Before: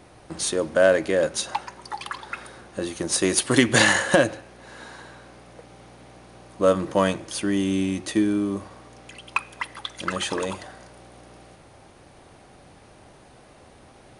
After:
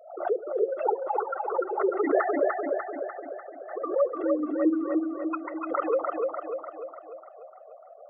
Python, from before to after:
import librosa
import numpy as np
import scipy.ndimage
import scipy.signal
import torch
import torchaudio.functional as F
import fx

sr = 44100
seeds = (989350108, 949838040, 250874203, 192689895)

y = fx.sine_speech(x, sr)
y = scipy.signal.sosfilt(scipy.signal.butter(4, 1200.0, 'lowpass', fs=sr, output='sos'), y)
y = fx.peak_eq(y, sr, hz=830.0, db=-5.0, octaves=0.26)
y = fx.hum_notches(y, sr, base_hz=50, count=7)
y = y + 0.76 * np.pad(y, (int(1.5 * sr / 1000.0), 0))[:len(y)]
y = fx.over_compress(y, sr, threshold_db=-23.0, ratio=-0.5)
y = fx.spec_gate(y, sr, threshold_db=-20, keep='strong')
y = fx.stretch_vocoder(y, sr, factor=0.57)
y = fx.echo_feedback(y, sr, ms=297, feedback_pct=56, wet_db=-3)
y = fx.pre_swell(y, sr, db_per_s=100.0)